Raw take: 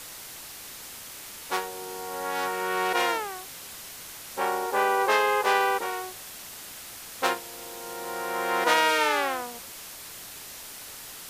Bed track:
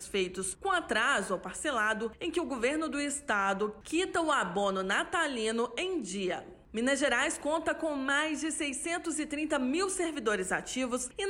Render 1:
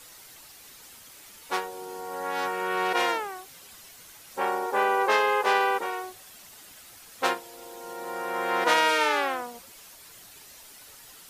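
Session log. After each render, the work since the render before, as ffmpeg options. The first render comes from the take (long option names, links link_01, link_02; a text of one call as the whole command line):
ffmpeg -i in.wav -af "afftdn=noise_reduction=9:noise_floor=-42" out.wav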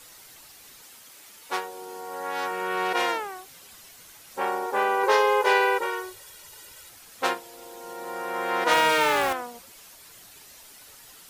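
ffmpeg -i in.wav -filter_complex "[0:a]asettb=1/sr,asplit=3[link_01][link_02][link_03];[link_01]atrim=end=0.824[link_04];[link_02]atrim=start=0.82:end=2.51,asetpts=PTS-STARTPTS,afade=type=in:duration=0.004:curve=qsin,afade=type=out:start_time=1.686:duration=0.004:curve=qsin,lowshelf=frequency=130:gain=-11[link_05];[link_03]atrim=start=2.506[link_06];[link_04][link_05]acrossfade=duration=0.004:curve1=hsin:curve2=qsin[link_07];[link_07][link_06]acrossfade=duration=0.004:curve1=qsin:curve2=hsin,asettb=1/sr,asplit=3[link_08][link_09][link_10];[link_08]atrim=end=5.034[link_11];[link_09]atrim=start=5.03:end=6.89,asetpts=PTS-STARTPTS,afade=type=in:duration=0.004:curve=qsin,afade=type=out:start_time=1.856:duration=0.004:curve=qsin,aecho=1:1:2.1:0.8,atrim=end_sample=82026[link_12];[link_10]atrim=start=6.886[link_13];[link_11][link_12]acrossfade=duration=0.004:curve1=hsin:curve2=qsin[link_14];[link_14][link_13]acrossfade=duration=0.004:curve1=qsin:curve2=hsin,asettb=1/sr,asplit=3[link_15][link_16][link_17];[link_15]atrim=end=8.714[link_18];[link_16]atrim=start=8.71:end=9.33,asetpts=PTS-STARTPTS,afade=type=in:duration=0.004:curve=qsin,afade=type=out:start_time=0.616:duration=0.004:curve=qsin,aeval=exprs='val(0)+0.5*0.0473*sgn(val(0))':channel_layout=same[link_19];[link_17]atrim=start=9.326[link_20];[link_18][link_19]acrossfade=duration=0.004:curve1=hsin:curve2=qsin[link_21];[link_21][link_20]acrossfade=duration=0.004:curve1=qsin:curve2=hsin" out.wav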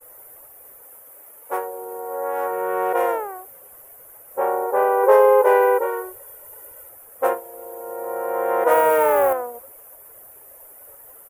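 ffmpeg -i in.wav -af "firequalizer=gain_entry='entry(100,0);entry(200,-7);entry(530,13);entry(760,5);entry(4100,-25);entry(11000,8);entry(15000,11)':delay=0.05:min_phase=1,agate=range=-33dB:threshold=-42dB:ratio=3:detection=peak" out.wav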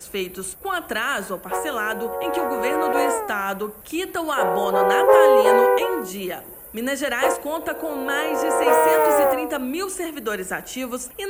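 ffmpeg -i in.wav -i bed.wav -filter_complex "[1:a]volume=4dB[link_01];[0:a][link_01]amix=inputs=2:normalize=0" out.wav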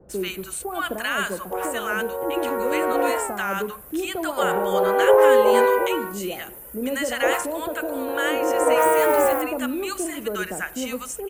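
ffmpeg -i in.wav -filter_complex "[0:a]acrossover=split=860[link_01][link_02];[link_02]adelay=90[link_03];[link_01][link_03]amix=inputs=2:normalize=0" out.wav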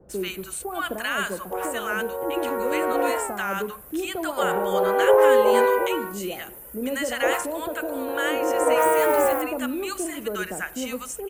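ffmpeg -i in.wav -af "volume=-1.5dB" out.wav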